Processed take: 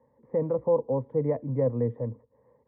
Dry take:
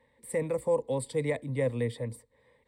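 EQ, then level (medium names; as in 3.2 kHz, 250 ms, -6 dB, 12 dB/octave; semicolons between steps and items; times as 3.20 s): high-pass 86 Hz; low-pass 1.2 kHz 24 dB/octave; distance through air 400 m; +4.5 dB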